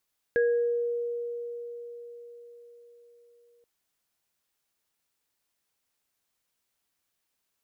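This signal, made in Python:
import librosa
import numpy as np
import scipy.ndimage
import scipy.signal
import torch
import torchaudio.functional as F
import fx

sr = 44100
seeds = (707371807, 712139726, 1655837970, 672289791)

y = fx.additive_free(sr, length_s=3.28, hz=475.0, level_db=-20.0, upper_db=(-7,), decay_s=4.89, upper_decays_s=(0.59,), upper_hz=(1650.0,))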